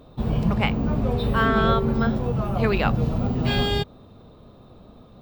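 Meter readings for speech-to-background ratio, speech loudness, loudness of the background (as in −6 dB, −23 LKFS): −1.0 dB, −25.5 LKFS, −24.5 LKFS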